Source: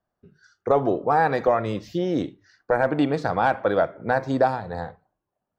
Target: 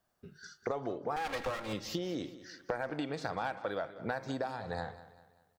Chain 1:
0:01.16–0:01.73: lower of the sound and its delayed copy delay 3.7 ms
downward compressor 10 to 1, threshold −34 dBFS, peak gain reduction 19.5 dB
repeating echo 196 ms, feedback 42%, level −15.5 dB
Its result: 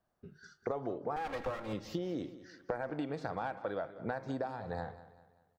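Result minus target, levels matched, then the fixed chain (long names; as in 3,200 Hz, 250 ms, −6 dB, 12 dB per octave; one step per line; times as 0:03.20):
4,000 Hz band −7.0 dB
0:01.16–0:01.73: lower of the sound and its delayed copy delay 3.7 ms
downward compressor 10 to 1, threshold −34 dBFS, peak gain reduction 19.5 dB
high-shelf EQ 2,000 Hz +11 dB
repeating echo 196 ms, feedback 42%, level −15.5 dB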